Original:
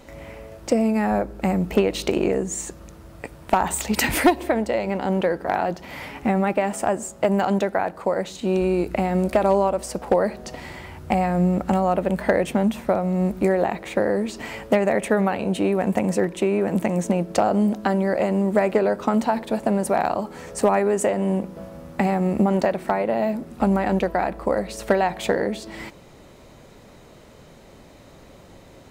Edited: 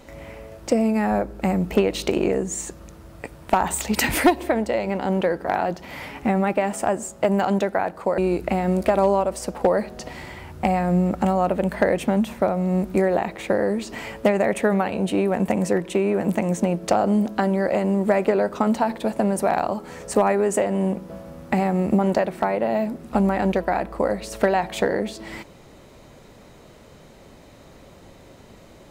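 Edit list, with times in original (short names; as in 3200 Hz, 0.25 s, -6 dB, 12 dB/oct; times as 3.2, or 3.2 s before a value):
8.18–8.65 cut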